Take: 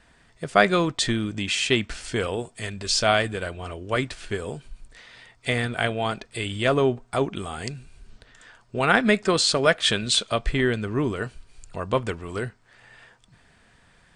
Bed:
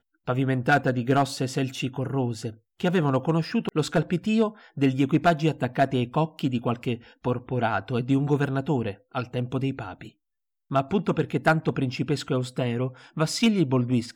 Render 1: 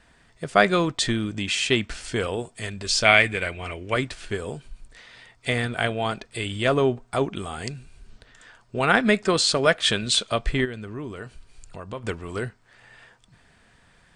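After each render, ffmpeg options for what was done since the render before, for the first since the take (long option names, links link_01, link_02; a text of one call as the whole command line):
ffmpeg -i in.wav -filter_complex "[0:a]asettb=1/sr,asplit=3[link_01][link_02][link_03];[link_01]atrim=end=3.054[link_04];[link_02]atrim=start=3.05:end=3.94,asetpts=PTS-STARTPTS,afade=type=in:duration=0.004:curve=qsin,afade=type=out:start_time=0.886:duration=0.004:curve=qsin,equalizer=frequency=2200:width_type=o:width=0.5:gain=15[link_05];[link_03]atrim=start=3.936[link_06];[link_04][link_05]acrossfade=duration=0.004:curve1=hsin:curve2=qsin[link_07];[link_07][link_06]acrossfade=duration=0.004:curve1=qsin:curve2=hsin,asplit=3[link_08][link_09][link_10];[link_08]afade=type=out:start_time=10.64:duration=0.02[link_11];[link_09]acompressor=threshold=-38dB:ratio=2:attack=3.2:release=140:knee=1:detection=peak,afade=type=in:start_time=10.64:duration=0.02,afade=type=out:start_time=12.03:duration=0.02[link_12];[link_10]afade=type=in:start_time=12.03:duration=0.02[link_13];[link_11][link_12][link_13]amix=inputs=3:normalize=0" out.wav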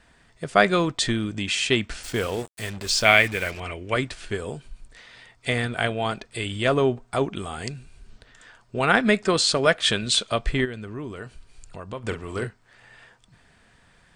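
ffmpeg -i in.wav -filter_complex "[0:a]asettb=1/sr,asplit=3[link_01][link_02][link_03];[link_01]atrim=end=2.034[link_04];[link_02]atrim=start=2.03:end=3.6,asetpts=PTS-STARTPTS,afade=type=in:duration=0.004:curve=qsin,afade=type=out:start_time=1.566:duration=0.004:curve=qsin,acrusher=bits=5:mix=0:aa=0.5[link_05];[link_03]atrim=start=3.596[link_06];[link_04][link_05]acrossfade=duration=0.004:curve1=hsin:curve2=qsin[link_07];[link_07][link_06]acrossfade=duration=0.004:curve1=qsin:curve2=hsin,asettb=1/sr,asplit=3[link_08][link_09][link_10];[link_08]atrim=end=12.074[link_11];[link_09]atrim=start=12.07:end=12.47,asetpts=PTS-STARTPTS,afade=type=in:duration=0.004:curve=qsin,afade=type=out:start_time=0.396:duration=0.004:curve=qsin,asplit=2[link_12][link_13];[link_13]adelay=43,volume=-8.5dB[link_14];[link_12][link_14]amix=inputs=2:normalize=0,atrim=end_sample=17640[link_15];[link_10]atrim=start=12.466[link_16];[link_11][link_15]acrossfade=duration=0.004:curve1=hsin:curve2=qsin[link_17];[link_17][link_16]acrossfade=duration=0.004:curve1=qsin:curve2=hsin" out.wav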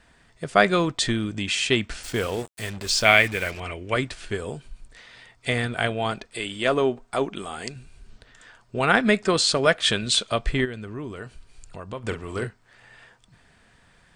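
ffmpeg -i in.wav -filter_complex "[0:a]asettb=1/sr,asplit=3[link_01][link_02][link_03];[link_01]atrim=end=6.264[link_04];[link_02]atrim=start=6.26:end=7.76,asetpts=PTS-STARTPTS,afade=type=in:duration=0.004:curve=qsin,afade=type=out:start_time=1.496:duration=0.004:curve=qsin,equalizer=frequency=99:width=1.2:gain=-12.5[link_05];[link_03]atrim=start=7.756[link_06];[link_04][link_05]acrossfade=duration=0.004:curve1=hsin:curve2=qsin[link_07];[link_07][link_06]acrossfade=duration=0.004:curve1=qsin:curve2=hsin" out.wav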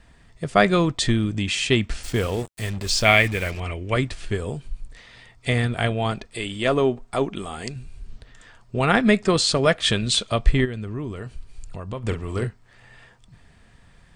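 ffmpeg -i in.wav -af "lowshelf=frequency=180:gain=10,bandreject=frequency=1500:width=15" out.wav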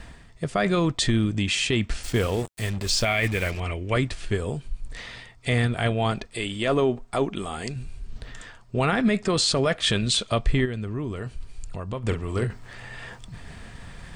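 ffmpeg -i in.wav -af "alimiter=limit=-13dB:level=0:latency=1:release=15,areverse,acompressor=mode=upward:threshold=-28dB:ratio=2.5,areverse" out.wav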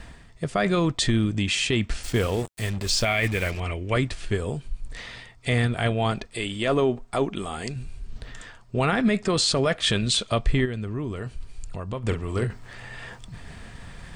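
ffmpeg -i in.wav -af anull out.wav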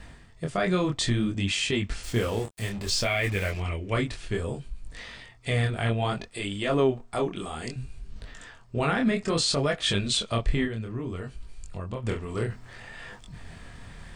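ffmpeg -i in.wav -af "flanger=delay=20:depth=7.2:speed=0.61" out.wav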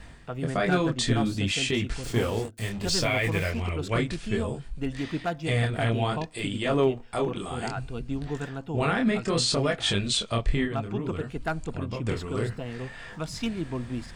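ffmpeg -i in.wav -i bed.wav -filter_complex "[1:a]volume=-9.5dB[link_01];[0:a][link_01]amix=inputs=2:normalize=0" out.wav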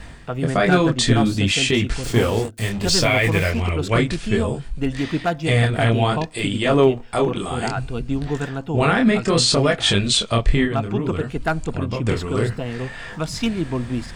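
ffmpeg -i in.wav -af "volume=8dB" out.wav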